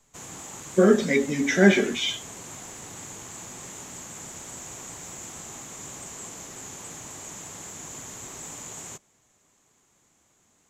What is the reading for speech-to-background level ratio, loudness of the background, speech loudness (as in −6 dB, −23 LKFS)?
16.5 dB, −38.0 LKFS, −21.5 LKFS